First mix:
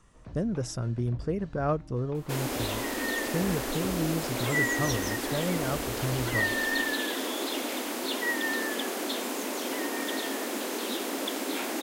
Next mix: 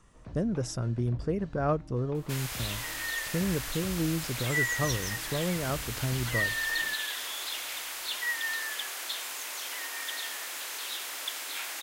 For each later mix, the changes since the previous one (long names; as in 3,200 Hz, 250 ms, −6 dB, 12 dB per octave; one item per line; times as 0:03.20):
second sound: add high-pass filter 1,400 Hz 12 dB per octave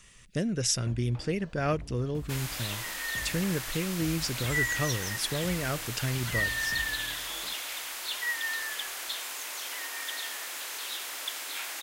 speech: add high shelf with overshoot 1,600 Hz +12 dB, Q 1.5
first sound: entry +0.60 s